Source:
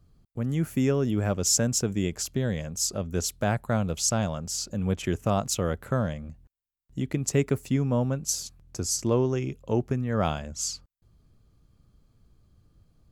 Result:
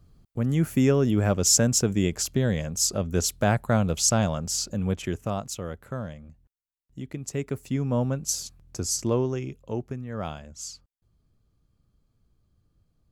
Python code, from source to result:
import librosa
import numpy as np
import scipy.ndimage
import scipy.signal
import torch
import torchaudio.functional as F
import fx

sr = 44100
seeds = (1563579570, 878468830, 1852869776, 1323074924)

y = fx.gain(x, sr, db=fx.line((4.58, 3.5), (5.58, -7.0), (7.34, -7.0), (7.99, 0.5), (9.0, 0.5), (9.99, -7.0)))